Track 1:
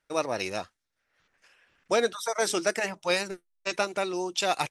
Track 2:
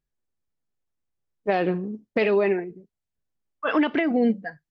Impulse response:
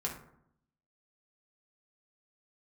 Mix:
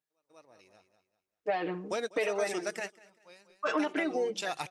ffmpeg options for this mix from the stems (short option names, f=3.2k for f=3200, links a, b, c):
-filter_complex "[0:a]volume=-7dB,asplit=2[a][b];[b]volume=-22.5dB[c];[1:a]highpass=350,aecho=1:1:6.5:0.97,volume=-4.5dB,asplit=2[d][e];[e]apad=whole_len=207626[f];[a][f]sidechaingate=range=-47dB:threshold=-58dB:ratio=16:detection=peak[g];[c]aecho=0:1:195|390|585|780|975:1|0.32|0.102|0.0328|0.0105[h];[g][d][h]amix=inputs=3:normalize=0,acompressor=threshold=-31dB:ratio=2"